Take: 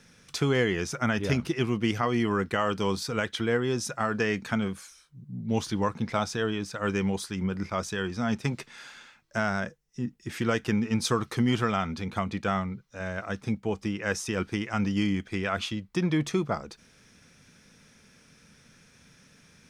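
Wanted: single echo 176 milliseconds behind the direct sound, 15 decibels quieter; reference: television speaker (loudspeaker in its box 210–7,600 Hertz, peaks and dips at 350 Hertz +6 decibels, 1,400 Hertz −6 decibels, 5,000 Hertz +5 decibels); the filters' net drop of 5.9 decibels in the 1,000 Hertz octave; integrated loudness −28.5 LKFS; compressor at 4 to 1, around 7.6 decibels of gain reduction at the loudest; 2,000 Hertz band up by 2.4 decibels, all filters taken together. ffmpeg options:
ffmpeg -i in.wav -af "equalizer=frequency=1000:width_type=o:gain=-8,equalizer=frequency=2000:width_type=o:gain=7.5,acompressor=threshold=-29dB:ratio=4,highpass=frequency=210:width=0.5412,highpass=frequency=210:width=1.3066,equalizer=frequency=350:width_type=q:width=4:gain=6,equalizer=frequency=1400:width_type=q:width=4:gain=-6,equalizer=frequency=5000:width_type=q:width=4:gain=5,lowpass=frequency=7600:width=0.5412,lowpass=frequency=7600:width=1.3066,aecho=1:1:176:0.178,volume=5.5dB" out.wav

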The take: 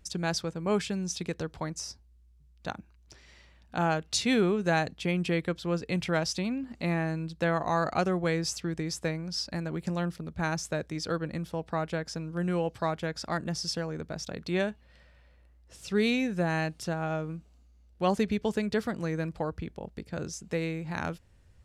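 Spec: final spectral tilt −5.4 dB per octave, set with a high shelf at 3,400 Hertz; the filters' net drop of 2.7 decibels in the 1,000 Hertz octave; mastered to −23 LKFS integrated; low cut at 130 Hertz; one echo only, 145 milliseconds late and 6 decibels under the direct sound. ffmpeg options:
ffmpeg -i in.wav -af "highpass=130,equalizer=frequency=1000:width_type=o:gain=-3,highshelf=frequency=3400:gain=-7.5,aecho=1:1:145:0.501,volume=8.5dB" out.wav

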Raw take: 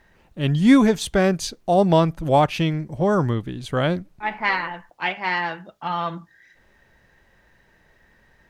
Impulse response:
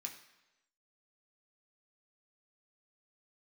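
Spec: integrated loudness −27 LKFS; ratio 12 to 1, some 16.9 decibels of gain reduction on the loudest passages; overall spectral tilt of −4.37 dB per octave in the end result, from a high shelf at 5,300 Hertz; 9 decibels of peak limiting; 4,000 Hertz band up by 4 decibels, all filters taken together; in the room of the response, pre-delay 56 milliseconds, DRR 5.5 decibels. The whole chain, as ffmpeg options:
-filter_complex "[0:a]equalizer=frequency=4000:width_type=o:gain=8.5,highshelf=frequency=5300:gain=-8.5,acompressor=threshold=-26dB:ratio=12,alimiter=limit=-23.5dB:level=0:latency=1,asplit=2[link_01][link_02];[1:a]atrim=start_sample=2205,adelay=56[link_03];[link_02][link_03]afir=irnorm=-1:irlink=0,volume=-2.5dB[link_04];[link_01][link_04]amix=inputs=2:normalize=0,volume=6dB"

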